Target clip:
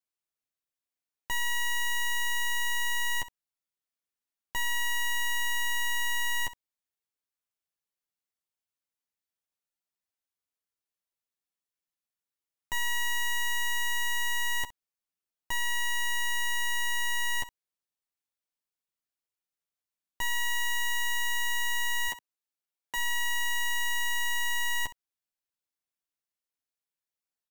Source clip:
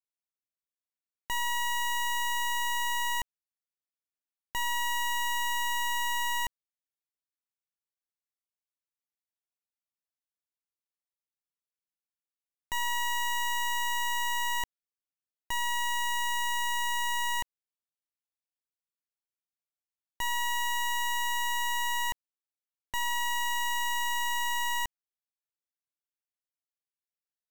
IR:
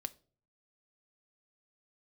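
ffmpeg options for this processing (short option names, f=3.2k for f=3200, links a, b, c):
-filter_complex "[0:a]asplit=3[a][b][c];[a]afade=t=out:st=22.07:d=0.02[d];[b]highpass=210,afade=t=in:st=22.07:d=0.02,afade=t=out:st=22.96:d=0.02[e];[c]afade=t=in:st=22.96:d=0.02[f];[d][e][f]amix=inputs=3:normalize=0,asplit=2[g][h];[h]aecho=0:1:11|66:0.531|0.158[i];[g][i]amix=inputs=2:normalize=0"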